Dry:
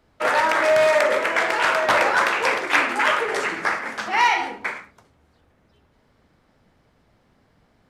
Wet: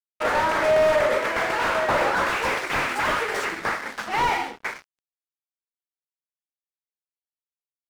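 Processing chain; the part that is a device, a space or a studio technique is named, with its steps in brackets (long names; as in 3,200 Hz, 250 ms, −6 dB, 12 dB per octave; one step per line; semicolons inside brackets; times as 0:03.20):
0:02.29–0:03.45: spectral tilt +2 dB per octave
early transistor amplifier (dead-zone distortion −37.5 dBFS; slew-rate limiting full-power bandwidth 130 Hz)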